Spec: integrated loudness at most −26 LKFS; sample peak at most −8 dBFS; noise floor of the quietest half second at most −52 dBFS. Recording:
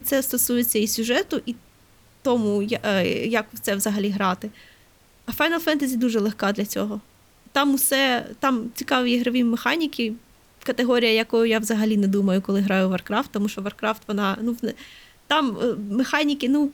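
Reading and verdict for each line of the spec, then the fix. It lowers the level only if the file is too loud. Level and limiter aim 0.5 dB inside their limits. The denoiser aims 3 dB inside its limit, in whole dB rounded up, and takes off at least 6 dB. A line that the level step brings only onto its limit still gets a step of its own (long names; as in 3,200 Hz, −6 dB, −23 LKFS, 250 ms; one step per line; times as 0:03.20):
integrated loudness −22.5 LKFS: out of spec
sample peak −6.5 dBFS: out of spec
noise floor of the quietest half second −55 dBFS: in spec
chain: level −4 dB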